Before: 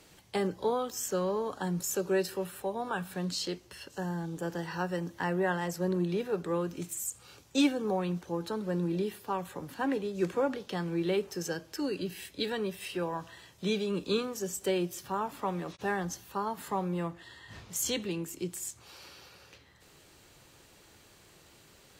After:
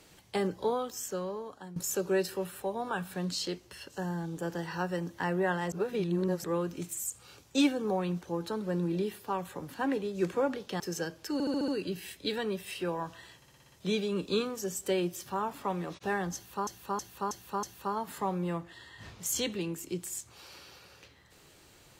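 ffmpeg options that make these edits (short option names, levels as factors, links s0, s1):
-filter_complex "[0:a]asplit=20[s0][s1][s2][s3][s4][s5][s6][s7][s8][s9][s10][s11][s12][s13][s14][s15][s16][s17][s18][s19];[s0]atrim=end=1.76,asetpts=PTS-STARTPTS,afade=t=out:st=0.62:d=1.14:silence=0.16788[s20];[s1]atrim=start=1.76:end=5.722,asetpts=PTS-STARTPTS,afade=t=in:d=0.004:c=hsin:silence=0.16788[s21];[s2]atrim=start=5.718:end=6.442,asetpts=PTS-STARTPTS,areverse[s22];[s3]atrim=start=6.438:end=10.802[s23];[s4]atrim=start=11.288:end=11.892[s24];[s5]atrim=start=11.818:end=11.892[s25];[s6]atrim=start=11.818:end=11.892[s26];[s7]atrim=start=11.818:end=11.892[s27];[s8]atrim=start=11.818:end=11.892[s28];[s9]atrim=start=11.818:end=13.562[s29];[s10]atrim=start=13.498:end=13.562[s30];[s11]atrim=start=13.498:end=13.562[s31];[s12]atrim=start=13.498:end=13.562[s32];[s13]atrim=start=13.498:end=13.562[s33];[s14]atrim=start=13.498:end=13.562[s34];[s15]atrim=start=13.498:end=16.452[s35];[s16]atrim=start=16.128:end=16.452[s36];[s17]atrim=start=16.128:end=16.452[s37];[s18]atrim=start=16.128:end=16.452[s38];[s19]atrim=start=16.128[s39];[s20][s21]concat=n=2:v=0:a=1[s40];[s40][s22]acrossfade=d=0.004:c1=hsin:c2=hsin[s41];[s41][s23]acrossfade=d=0.004:c1=hsin:c2=hsin[s42];[s42][s24]acrossfade=d=0.004:c1=hsin:c2=hsin[s43];[s43][s25]acrossfade=d=0.004:c1=hsin:c2=hsin[s44];[s44][s26]acrossfade=d=0.004:c1=hsin:c2=hsin[s45];[s45][s27]acrossfade=d=0.004:c1=hsin:c2=hsin[s46];[s46][s28]acrossfade=d=0.004:c1=hsin:c2=hsin[s47];[s47][s29]acrossfade=d=0.004:c1=hsin:c2=hsin[s48];[s48][s30]acrossfade=d=0.004:c1=hsin:c2=hsin[s49];[s49][s31]acrossfade=d=0.004:c1=hsin:c2=hsin[s50];[s50][s32]acrossfade=d=0.004:c1=hsin:c2=hsin[s51];[s51][s33]acrossfade=d=0.004:c1=hsin:c2=hsin[s52];[s52][s34]acrossfade=d=0.004:c1=hsin:c2=hsin[s53];[s53][s35]acrossfade=d=0.004:c1=hsin:c2=hsin[s54];[s54][s36]acrossfade=d=0.004:c1=hsin:c2=hsin[s55];[s55][s37]acrossfade=d=0.004:c1=hsin:c2=hsin[s56];[s56][s38]acrossfade=d=0.004:c1=hsin:c2=hsin[s57];[s57][s39]acrossfade=d=0.004:c1=hsin:c2=hsin"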